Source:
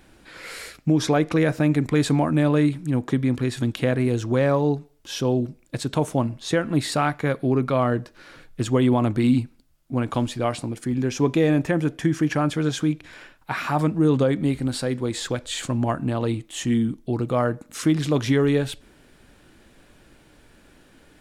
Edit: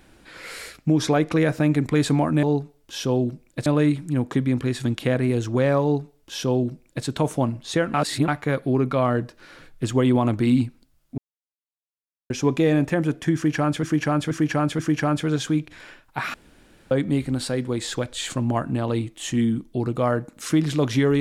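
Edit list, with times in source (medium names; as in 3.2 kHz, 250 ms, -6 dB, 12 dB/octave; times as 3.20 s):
4.59–5.82 s: copy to 2.43 s
6.71–7.05 s: reverse
9.95–11.07 s: mute
12.12–12.60 s: loop, 4 plays
13.67–14.24 s: room tone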